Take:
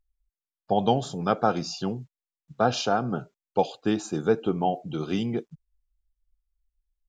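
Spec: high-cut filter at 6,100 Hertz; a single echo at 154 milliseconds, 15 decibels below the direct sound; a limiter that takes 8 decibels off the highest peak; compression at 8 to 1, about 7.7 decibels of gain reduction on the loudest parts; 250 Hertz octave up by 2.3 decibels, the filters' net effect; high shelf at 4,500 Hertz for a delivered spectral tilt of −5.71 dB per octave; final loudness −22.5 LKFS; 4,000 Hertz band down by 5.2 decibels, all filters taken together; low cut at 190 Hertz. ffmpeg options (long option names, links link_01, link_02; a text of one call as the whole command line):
ffmpeg -i in.wav -af "highpass=190,lowpass=6100,equalizer=frequency=250:width_type=o:gain=5,equalizer=frequency=4000:width_type=o:gain=-4.5,highshelf=frequency=4500:gain=-3,acompressor=threshold=-24dB:ratio=8,alimiter=limit=-21dB:level=0:latency=1,aecho=1:1:154:0.178,volume=11dB" out.wav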